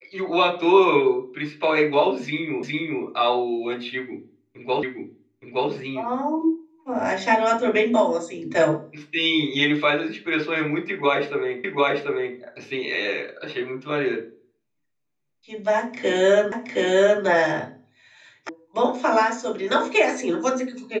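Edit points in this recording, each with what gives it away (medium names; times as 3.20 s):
2.63 s: repeat of the last 0.41 s
4.83 s: repeat of the last 0.87 s
11.64 s: repeat of the last 0.74 s
16.52 s: repeat of the last 0.72 s
18.49 s: sound stops dead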